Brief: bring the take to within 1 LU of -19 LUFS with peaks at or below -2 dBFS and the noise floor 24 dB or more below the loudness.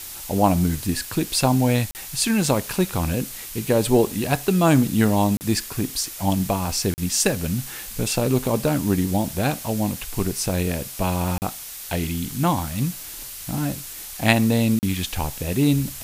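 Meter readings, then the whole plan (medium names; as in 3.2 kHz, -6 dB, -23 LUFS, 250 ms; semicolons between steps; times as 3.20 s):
dropouts 5; longest dropout 39 ms; noise floor -36 dBFS; noise floor target -47 dBFS; loudness -22.5 LUFS; peak level -1.5 dBFS; loudness target -19.0 LUFS
-> interpolate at 1.91/5.37/6.94/11.38/14.79 s, 39 ms; noise print and reduce 11 dB; trim +3.5 dB; peak limiter -2 dBFS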